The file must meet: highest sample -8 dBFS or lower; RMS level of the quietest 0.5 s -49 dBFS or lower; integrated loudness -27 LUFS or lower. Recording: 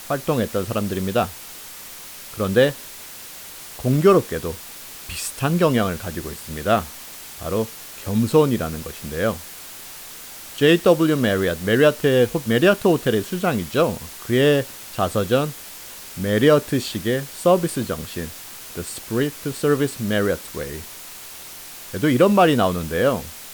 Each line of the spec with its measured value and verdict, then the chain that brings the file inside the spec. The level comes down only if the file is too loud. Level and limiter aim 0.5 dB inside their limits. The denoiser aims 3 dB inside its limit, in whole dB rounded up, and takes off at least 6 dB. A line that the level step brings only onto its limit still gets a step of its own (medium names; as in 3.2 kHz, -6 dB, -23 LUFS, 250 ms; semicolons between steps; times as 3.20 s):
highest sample -4.0 dBFS: fail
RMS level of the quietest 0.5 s -38 dBFS: fail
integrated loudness -20.5 LUFS: fail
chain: noise reduction 7 dB, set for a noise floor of -38 dBFS; trim -7 dB